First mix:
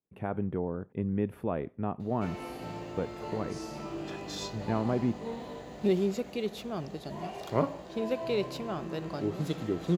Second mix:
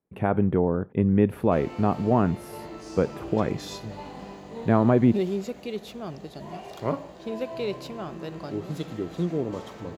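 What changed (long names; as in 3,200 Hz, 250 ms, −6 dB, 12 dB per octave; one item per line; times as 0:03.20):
speech +10.0 dB
background: entry −0.70 s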